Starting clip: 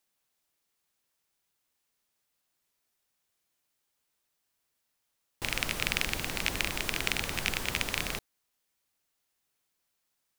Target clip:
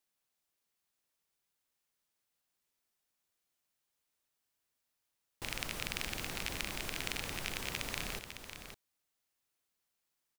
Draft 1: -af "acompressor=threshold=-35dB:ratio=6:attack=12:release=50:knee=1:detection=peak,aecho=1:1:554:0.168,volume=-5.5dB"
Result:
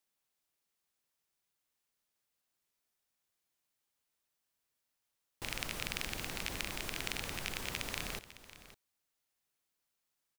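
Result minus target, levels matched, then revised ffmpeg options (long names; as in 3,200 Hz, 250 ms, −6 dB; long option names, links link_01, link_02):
echo-to-direct −7 dB
-af "acompressor=threshold=-35dB:ratio=6:attack=12:release=50:knee=1:detection=peak,aecho=1:1:554:0.376,volume=-5.5dB"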